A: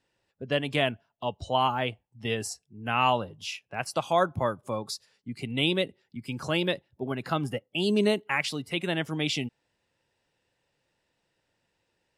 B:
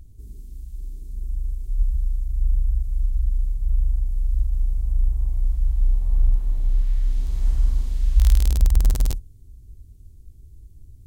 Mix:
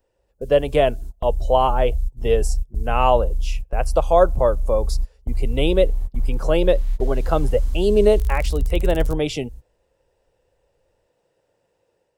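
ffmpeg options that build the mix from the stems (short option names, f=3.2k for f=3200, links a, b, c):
-filter_complex "[0:a]equalizer=f=250:t=o:w=1:g=-4,equalizer=f=500:t=o:w=1:g=12,equalizer=f=2k:t=o:w=1:g=-5,equalizer=f=4k:t=o:w=1:g=-6,volume=0.5dB,asplit=2[a][b];[1:a]acrossover=split=250|7200[c][d][e];[c]acompressor=threshold=-22dB:ratio=4[f];[d]acompressor=threshold=-55dB:ratio=4[g];[e]acompressor=threshold=-47dB:ratio=4[h];[f][g][h]amix=inputs=3:normalize=0,volume=1dB[i];[b]apad=whole_len=487994[j];[i][j]sidechaingate=range=-33dB:threshold=-47dB:ratio=16:detection=peak[k];[a][k]amix=inputs=2:normalize=0,dynaudnorm=f=260:g=3:m=4dB"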